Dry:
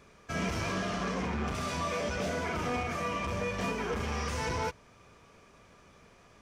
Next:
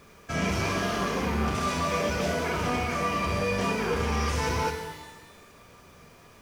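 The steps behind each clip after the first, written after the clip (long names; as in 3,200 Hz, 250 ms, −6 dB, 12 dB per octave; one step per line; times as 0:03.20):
bit reduction 11 bits
reverb with rising layers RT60 1.1 s, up +12 semitones, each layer −8 dB, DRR 5.5 dB
level +4 dB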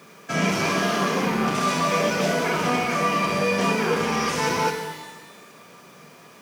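Chebyshev high-pass filter 160 Hz, order 3
level +6 dB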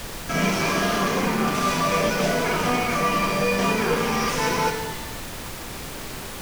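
background noise pink −34 dBFS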